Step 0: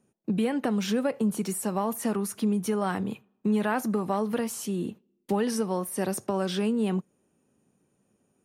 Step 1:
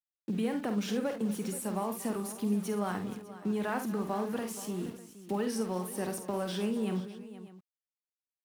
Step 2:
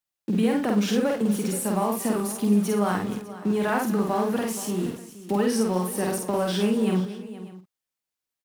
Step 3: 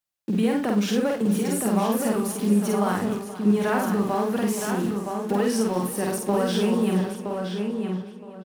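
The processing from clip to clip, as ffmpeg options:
-af "aeval=exprs='val(0)*gte(abs(val(0)),0.00944)':c=same,aecho=1:1:49|72|237|475|601:0.398|0.2|0.141|0.178|0.119,volume=-6.5dB"
-filter_complex "[0:a]asplit=2[a][b];[b]adelay=49,volume=-7.5dB[c];[a][c]amix=inputs=2:normalize=0,volume=7.5dB"
-filter_complex "[0:a]asplit=2[a][b];[b]adelay=968,lowpass=f=3.7k:p=1,volume=-5dB,asplit=2[c][d];[d]adelay=968,lowpass=f=3.7k:p=1,volume=0.19,asplit=2[e][f];[f]adelay=968,lowpass=f=3.7k:p=1,volume=0.19[g];[a][c][e][g]amix=inputs=4:normalize=0"

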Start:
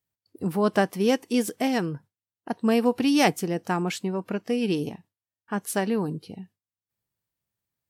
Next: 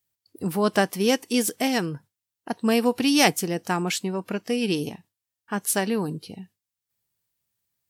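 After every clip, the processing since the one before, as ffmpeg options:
-af "highshelf=f=2.4k:g=8.5"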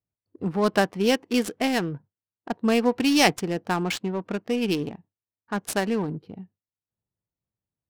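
-af "adynamicsmooth=sensitivity=4.5:basefreq=850"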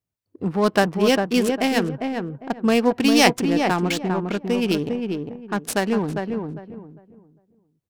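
-filter_complex "[0:a]asplit=2[a][b];[b]adelay=402,lowpass=f=1.3k:p=1,volume=-4dB,asplit=2[c][d];[d]adelay=402,lowpass=f=1.3k:p=1,volume=0.26,asplit=2[e][f];[f]adelay=402,lowpass=f=1.3k:p=1,volume=0.26,asplit=2[g][h];[h]adelay=402,lowpass=f=1.3k:p=1,volume=0.26[i];[a][c][e][g][i]amix=inputs=5:normalize=0,volume=3dB"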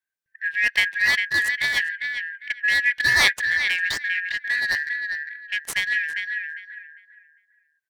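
-af "afftfilt=real='real(if(lt(b,272),68*(eq(floor(b/68),0)*3+eq(floor(b/68),1)*0+eq(floor(b/68),2)*1+eq(floor(b/68),3)*2)+mod(b,68),b),0)':imag='imag(if(lt(b,272),68*(eq(floor(b/68),0)*3+eq(floor(b/68),1)*0+eq(floor(b/68),2)*1+eq(floor(b/68),3)*2)+mod(b,68),b),0)':win_size=2048:overlap=0.75,volume=-2.5dB"

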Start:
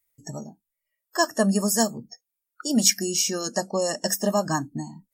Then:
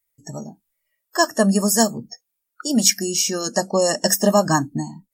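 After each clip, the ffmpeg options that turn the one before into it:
-af "dynaudnorm=f=230:g=5:m=14dB,volume=-1dB"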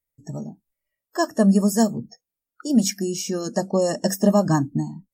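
-af "tiltshelf=f=650:g=6.5,volume=-3.5dB"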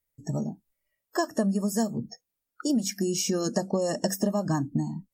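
-af "acompressor=threshold=-25dB:ratio=10,volume=2.5dB"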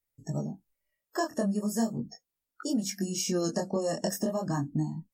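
-af "flanger=delay=18.5:depth=6.1:speed=0.39"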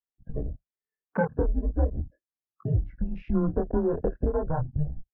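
-af "afwtdn=0.0158,highpass=f=160:t=q:w=0.5412,highpass=f=160:t=q:w=1.307,lowpass=f=2.2k:t=q:w=0.5176,lowpass=f=2.2k:t=q:w=0.7071,lowpass=f=2.2k:t=q:w=1.932,afreqshift=-160,volume=5dB"

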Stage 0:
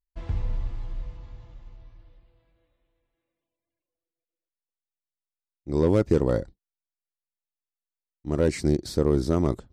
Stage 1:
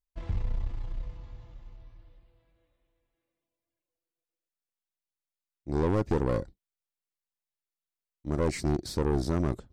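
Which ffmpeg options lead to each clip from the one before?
-af "aeval=exprs='(tanh(11.2*val(0)+0.5)-tanh(0.5))/11.2':c=same"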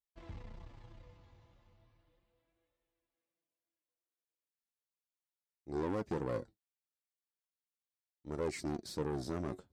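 -af "highpass=f=170:p=1,flanger=delay=2.2:depth=8.9:regen=52:speed=0.36:shape=sinusoidal,volume=-3.5dB"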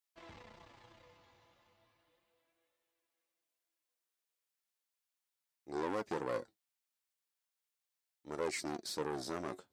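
-af "highpass=f=730:p=1,volume=5dB"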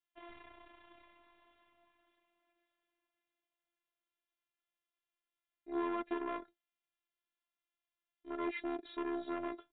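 -af "afftfilt=real='hypot(re,im)*cos(PI*b)':imag='0':win_size=512:overlap=0.75,aresample=8000,aresample=44100,volume=4dB"

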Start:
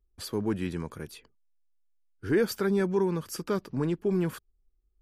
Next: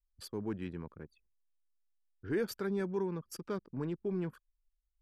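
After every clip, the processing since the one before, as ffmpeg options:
-af "anlmdn=0.631,volume=-8.5dB"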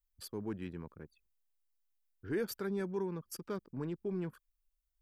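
-af "highshelf=f=11k:g=10.5,volume=-2dB"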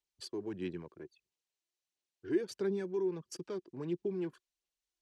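-filter_complex "[0:a]acrossover=split=360[a][b];[b]acompressor=threshold=-42dB:ratio=6[c];[a][c]amix=inputs=2:normalize=0,aphaser=in_gain=1:out_gain=1:delay=3:decay=0.4:speed=1.5:type=sinusoidal,highpass=150,equalizer=f=220:t=q:w=4:g=-5,equalizer=f=360:t=q:w=4:g=6,equalizer=f=1.3k:t=q:w=4:g=-7,equalizer=f=2.9k:t=q:w=4:g=4,equalizer=f=4.1k:t=q:w=4:g=4,equalizer=f=6k:t=q:w=4:g=4,lowpass=f=8.8k:w=0.5412,lowpass=f=8.8k:w=1.3066"

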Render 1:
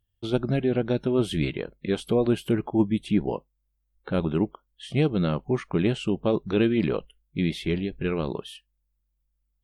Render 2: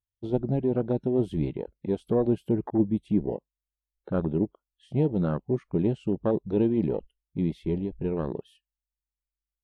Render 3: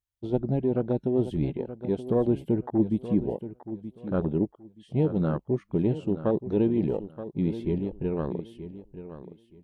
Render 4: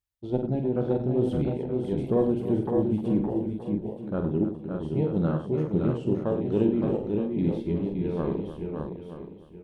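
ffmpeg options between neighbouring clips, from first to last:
-af "afwtdn=0.0316,volume=-1.5dB"
-af "aecho=1:1:926|1852|2778:0.237|0.0522|0.0115"
-af "tremolo=f=2.3:d=0.32,aecho=1:1:47|97|306|566|605:0.447|0.299|0.237|0.531|0.422"

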